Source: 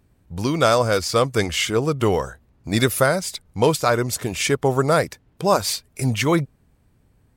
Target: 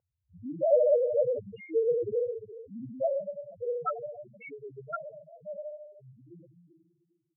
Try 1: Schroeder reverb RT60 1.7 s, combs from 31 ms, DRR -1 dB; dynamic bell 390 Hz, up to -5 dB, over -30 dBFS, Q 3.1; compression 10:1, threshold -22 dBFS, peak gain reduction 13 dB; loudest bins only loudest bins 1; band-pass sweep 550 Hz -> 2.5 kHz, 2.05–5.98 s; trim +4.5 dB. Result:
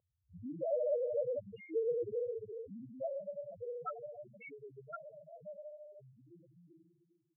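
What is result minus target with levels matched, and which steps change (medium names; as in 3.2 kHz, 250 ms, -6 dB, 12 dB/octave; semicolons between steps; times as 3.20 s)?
compression: peak gain reduction +13 dB
remove: compression 10:1, threshold -22 dBFS, peak gain reduction 13 dB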